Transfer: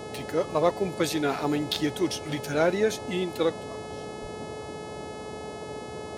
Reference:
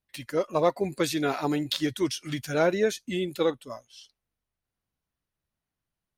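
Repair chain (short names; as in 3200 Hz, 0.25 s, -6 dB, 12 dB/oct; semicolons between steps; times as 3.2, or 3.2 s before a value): de-hum 428.4 Hz, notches 26; 4.21–4.33 HPF 140 Hz 24 dB/oct; noise print and reduce 30 dB; 3.49 gain correction +7 dB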